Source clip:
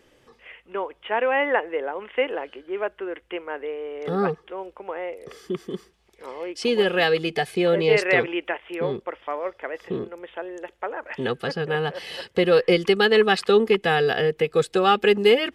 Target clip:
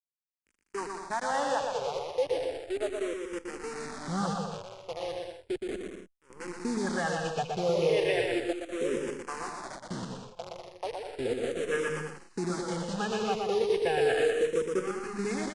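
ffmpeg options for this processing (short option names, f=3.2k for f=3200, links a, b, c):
-filter_complex "[0:a]afwtdn=0.0562,bandreject=f=2k:w=10,alimiter=limit=-15dB:level=0:latency=1:release=39,acrusher=bits=6:dc=4:mix=0:aa=0.000001,asettb=1/sr,asplit=3[a][b][c];[a]atrim=end=14.794[d];[b]atrim=start=14.79:end=15.19,asetpts=PTS-STARTPTS,afade=t=in:d=0.004:c=qsin,afade=t=out:st=0.396:d=0.004:c=qsin,volume=31dB,asoftclip=hard,volume=-31dB[e];[c]atrim=start=15.186[f];[d][e]acrossfade=d=0.004:c1=hsin:c2=qsin[g];[g][f]acrossfade=d=0.004:c1=qsin:c2=hsin,asplit=2[h][i];[i]aecho=0:1:120|198|248.7|281.7|303.1:0.631|0.398|0.251|0.158|0.1[j];[h][j]amix=inputs=2:normalize=0,aresample=22050,aresample=44100,asplit=2[k][l];[l]afreqshift=-0.35[m];[k][m]amix=inputs=2:normalize=1,volume=-3.5dB"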